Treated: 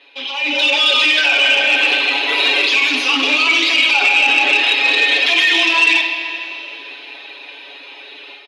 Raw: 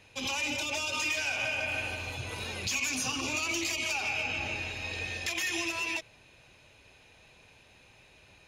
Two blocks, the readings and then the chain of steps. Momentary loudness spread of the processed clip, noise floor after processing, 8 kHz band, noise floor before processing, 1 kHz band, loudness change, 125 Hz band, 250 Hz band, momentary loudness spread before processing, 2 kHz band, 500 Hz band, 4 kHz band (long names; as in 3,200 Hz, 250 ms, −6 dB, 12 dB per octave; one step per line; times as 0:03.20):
14 LU, −37 dBFS, +3.5 dB, −59 dBFS, +17.5 dB, +19.5 dB, below −20 dB, +13.0 dB, 6 LU, +19.5 dB, +15.5 dB, +22.0 dB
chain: loose part that buzzes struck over −47 dBFS, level −29 dBFS
reverb reduction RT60 1.1 s
comb filter 7.1 ms, depth 98%
brickwall limiter −27 dBFS, peak gain reduction 9.5 dB
automatic gain control gain up to 14.5 dB
linear-phase brick-wall band-pass 260–12,000 Hz
high shelf with overshoot 5,200 Hz −13 dB, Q 3
flutter between parallel walls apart 8.9 metres, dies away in 0.32 s
four-comb reverb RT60 2.9 s, combs from 29 ms, DRR 5.5 dB
saturating transformer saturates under 1,700 Hz
level +4 dB